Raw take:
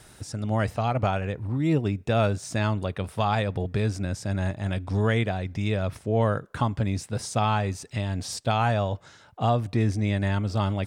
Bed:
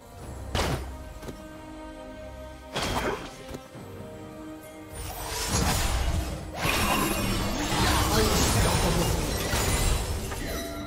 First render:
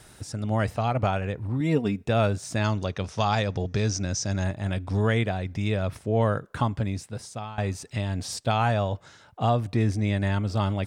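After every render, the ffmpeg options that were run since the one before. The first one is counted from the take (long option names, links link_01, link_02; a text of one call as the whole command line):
ffmpeg -i in.wav -filter_complex "[0:a]asettb=1/sr,asplit=3[link_01][link_02][link_03];[link_01]atrim=end=1.604[link_04];[link_02]atrim=start=1.6:end=2.04,asetpts=PTS-STARTPTS,afade=type=in:duration=0.004:curve=qsin,afade=type=out:start_time=0.436:duration=0.004:curve=qsin,aecho=1:1:4.3:0.65,atrim=end_sample=19404[link_05];[link_03]atrim=start=2.036[link_06];[link_04][link_05]acrossfade=duration=0.004:curve1=hsin:curve2=qsin[link_07];[link_07][link_06]acrossfade=duration=0.004:curve1=qsin:curve2=hsin,asettb=1/sr,asplit=3[link_08][link_09][link_10];[link_08]atrim=end=2.644[link_11];[link_09]atrim=start=2.64:end=4.44,asetpts=PTS-STARTPTS,afade=type=in:duration=0.004:curve=qsin,afade=type=out:start_time=1.796:duration=0.004:curve=qsin,lowpass=frequency=6000:width_type=q:width=7.1[link_12];[link_10]atrim=start=4.436[link_13];[link_11][link_12]acrossfade=duration=0.004:curve1=hsin:curve2=qsin[link_14];[link_14][link_13]acrossfade=duration=0.004:curve1=qsin:curve2=hsin,asplit=2[link_15][link_16];[link_15]atrim=end=7.58,asetpts=PTS-STARTPTS,afade=type=out:start_time=6.66:duration=0.92:silence=0.112202[link_17];[link_16]atrim=start=7.58,asetpts=PTS-STARTPTS,afade=type=in:duration=0.004:curve=hsin:silence=0.112202[link_18];[link_17][link_18]concat=n=2:v=0:a=1" out.wav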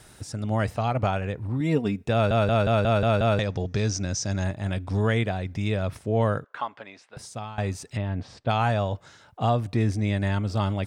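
ffmpeg -i in.wav -filter_complex "[0:a]asettb=1/sr,asplit=3[link_01][link_02][link_03];[link_01]atrim=end=6.444[link_04];[link_02]atrim=start=6.44:end=7.17,asetpts=PTS-STARTPTS,afade=type=in:duration=0.004:curve=qsin,afade=type=out:start_time=0.726:duration=0.004:curve=qsin,highpass=710,lowpass=3000[link_05];[link_03]atrim=start=7.166[link_06];[link_04][link_05]acrossfade=duration=0.004:curve1=hsin:curve2=qsin[link_07];[link_07][link_06]acrossfade=duration=0.004:curve1=qsin:curve2=hsin,asettb=1/sr,asplit=3[link_08][link_09][link_10];[link_08]atrim=end=7.974[link_11];[link_09]atrim=start=7.97:end=8.49,asetpts=PTS-STARTPTS,afade=type=in:duration=0.004:curve=qsin,afade=type=out:start_time=0.516:duration=0.004:curve=qsin,lowpass=2200[link_12];[link_10]atrim=start=8.486[link_13];[link_11][link_12]acrossfade=duration=0.004:curve1=hsin:curve2=qsin[link_14];[link_14][link_13]acrossfade=duration=0.004:curve1=qsin:curve2=hsin,asplit=8[link_15][link_16][link_17][link_18][link_19][link_20][link_21][link_22];[link_15]atrim=end=2.312[link_23];[link_16]atrim=start=2.128:end=2.312[link_24];[link_17]atrim=start=2.128:end=2.312[link_25];[link_18]atrim=start=2.128:end=2.312[link_26];[link_19]atrim=start=2.128:end=2.312[link_27];[link_20]atrim=start=2.128:end=2.312[link_28];[link_21]atrim=start=2.128:end=2.312[link_29];[link_22]atrim=start=3.388[link_30];[link_23][link_24]acrossfade=duration=0.004:curve1=hsin:curve2=hsin[link_31];[link_31][link_25]acrossfade=duration=0.004:curve1=hsin:curve2=hsin[link_32];[link_32][link_26]acrossfade=duration=0.004:curve1=hsin:curve2=hsin[link_33];[link_33][link_27]acrossfade=duration=0.004:curve1=hsin:curve2=hsin[link_34];[link_34][link_28]acrossfade=duration=0.004:curve1=hsin:curve2=hsin[link_35];[link_35][link_29]acrossfade=duration=0.004:curve1=hsin:curve2=hsin[link_36];[link_36][link_30]acrossfade=duration=0.004:curve1=hsin:curve2=hsin" out.wav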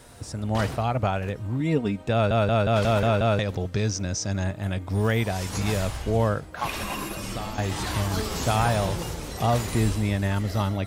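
ffmpeg -i in.wav -i bed.wav -filter_complex "[1:a]volume=-6.5dB[link_01];[0:a][link_01]amix=inputs=2:normalize=0" out.wav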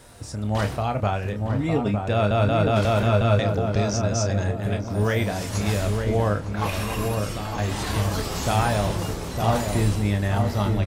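ffmpeg -i in.wav -filter_complex "[0:a]asplit=2[link_01][link_02];[link_02]adelay=29,volume=-8.5dB[link_03];[link_01][link_03]amix=inputs=2:normalize=0,asplit=2[link_04][link_05];[link_05]adelay=908,lowpass=frequency=1000:poles=1,volume=-3.5dB,asplit=2[link_06][link_07];[link_07]adelay=908,lowpass=frequency=1000:poles=1,volume=0.46,asplit=2[link_08][link_09];[link_09]adelay=908,lowpass=frequency=1000:poles=1,volume=0.46,asplit=2[link_10][link_11];[link_11]adelay=908,lowpass=frequency=1000:poles=1,volume=0.46,asplit=2[link_12][link_13];[link_13]adelay=908,lowpass=frequency=1000:poles=1,volume=0.46,asplit=2[link_14][link_15];[link_15]adelay=908,lowpass=frequency=1000:poles=1,volume=0.46[link_16];[link_06][link_08][link_10][link_12][link_14][link_16]amix=inputs=6:normalize=0[link_17];[link_04][link_17]amix=inputs=2:normalize=0" out.wav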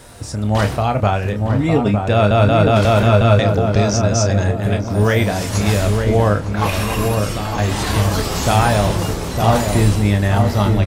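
ffmpeg -i in.wav -af "volume=7.5dB,alimiter=limit=-2dB:level=0:latency=1" out.wav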